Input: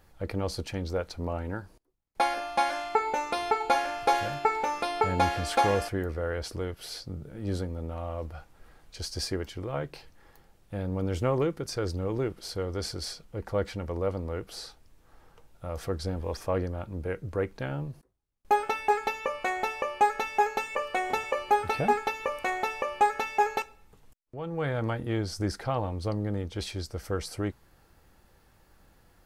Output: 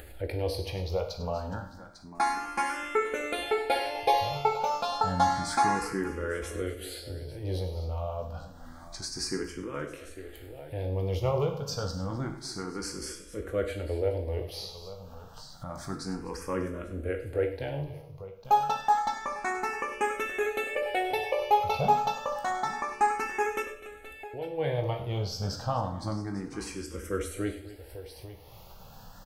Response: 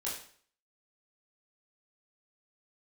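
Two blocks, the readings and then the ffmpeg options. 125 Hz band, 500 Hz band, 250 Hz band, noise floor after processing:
−1.0 dB, −0.5 dB, −2.0 dB, −49 dBFS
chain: -filter_complex "[0:a]highshelf=frequency=10000:gain=4,aecho=1:1:98|252|849:0.2|0.126|0.133,asplit=2[link_01][link_02];[1:a]atrim=start_sample=2205[link_03];[link_02][link_03]afir=irnorm=-1:irlink=0,volume=-3.5dB[link_04];[link_01][link_04]amix=inputs=2:normalize=0,acompressor=mode=upward:threshold=-31dB:ratio=2.5,asplit=2[link_05][link_06];[link_06]afreqshift=0.29[link_07];[link_05][link_07]amix=inputs=2:normalize=1,volume=-2dB"

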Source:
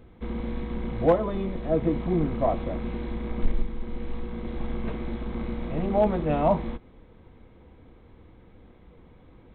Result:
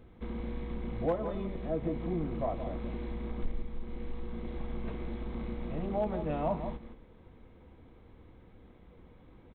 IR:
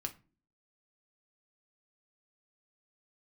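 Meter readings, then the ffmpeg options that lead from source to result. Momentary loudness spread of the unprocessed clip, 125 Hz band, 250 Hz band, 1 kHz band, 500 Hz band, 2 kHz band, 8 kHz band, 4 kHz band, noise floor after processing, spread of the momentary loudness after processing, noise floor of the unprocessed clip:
13 LU, −7.5 dB, −8.0 dB, −9.0 dB, −9.0 dB, −8.0 dB, can't be measured, −7.5 dB, −56 dBFS, 10 LU, −53 dBFS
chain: -filter_complex "[0:a]asplit=2[link_01][link_02];[link_02]adelay=169.1,volume=-11dB,highshelf=frequency=4000:gain=-3.8[link_03];[link_01][link_03]amix=inputs=2:normalize=0,acompressor=threshold=-34dB:ratio=1.5,volume=-4dB"

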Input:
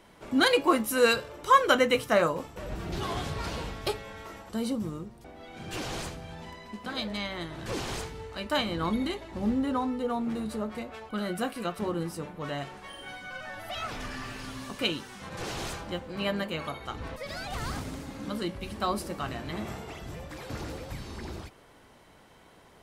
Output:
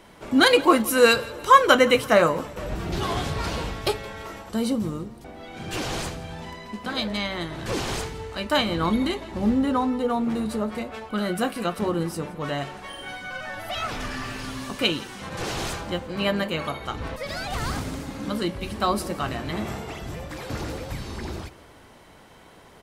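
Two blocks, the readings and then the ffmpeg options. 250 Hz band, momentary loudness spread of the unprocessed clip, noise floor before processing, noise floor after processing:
+6.0 dB, 17 LU, −56 dBFS, −50 dBFS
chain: -af "aecho=1:1:169|338|507|676:0.0841|0.0429|0.0219|0.0112,volume=6dB"

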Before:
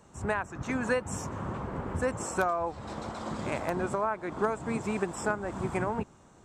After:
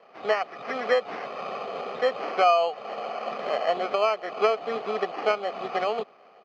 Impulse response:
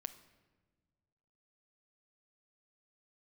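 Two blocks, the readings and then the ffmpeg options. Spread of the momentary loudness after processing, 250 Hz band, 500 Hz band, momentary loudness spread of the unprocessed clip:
11 LU, −7.5 dB, +7.0 dB, 7 LU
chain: -af "aecho=1:1:1.6:0.79,acrusher=samples=12:mix=1:aa=0.000001,highpass=frequency=270:width=0.5412,highpass=frequency=270:width=1.3066,equalizer=frequency=430:width_type=q:width=4:gain=7,equalizer=frequency=730:width_type=q:width=4:gain=8,equalizer=frequency=1200:width_type=q:width=4:gain=5,equalizer=frequency=2100:width_type=q:width=4:gain=4,lowpass=frequency=4300:width=0.5412,lowpass=frequency=4300:width=1.3066"

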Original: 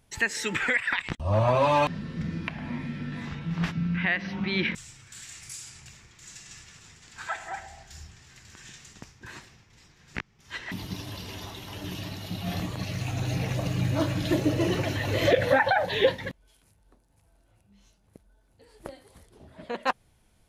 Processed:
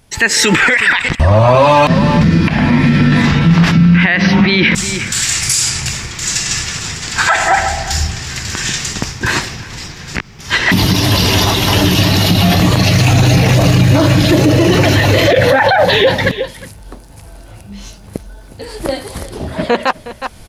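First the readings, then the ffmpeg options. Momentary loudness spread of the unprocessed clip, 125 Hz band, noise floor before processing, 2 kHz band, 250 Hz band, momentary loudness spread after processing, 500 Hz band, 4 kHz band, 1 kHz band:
23 LU, +19.5 dB, −64 dBFS, +16.5 dB, +19.5 dB, 15 LU, +14.5 dB, +21.0 dB, +15.5 dB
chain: -af "equalizer=frequency=4900:width=3.5:gain=3.5,dynaudnorm=framelen=220:gausssize=3:maxgain=15dB,aecho=1:1:362:0.1,alimiter=level_in=14.5dB:limit=-1dB:release=50:level=0:latency=1,volume=-1dB"

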